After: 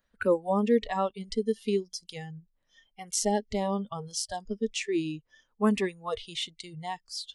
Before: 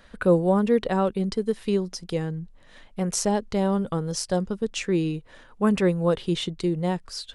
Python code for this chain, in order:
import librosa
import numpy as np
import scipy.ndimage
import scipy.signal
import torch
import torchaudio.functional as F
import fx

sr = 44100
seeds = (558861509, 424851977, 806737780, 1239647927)

y = fx.noise_reduce_blind(x, sr, reduce_db=22)
y = F.gain(torch.from_numpy(y), -2.0).numpy()